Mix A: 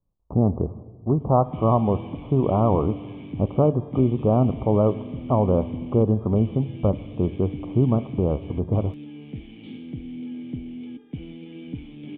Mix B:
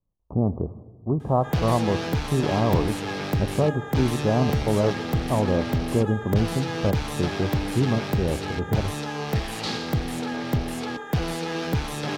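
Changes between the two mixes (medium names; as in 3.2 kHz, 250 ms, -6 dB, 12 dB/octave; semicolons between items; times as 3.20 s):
speech -3.0 dB; background: remove cascade formant filter i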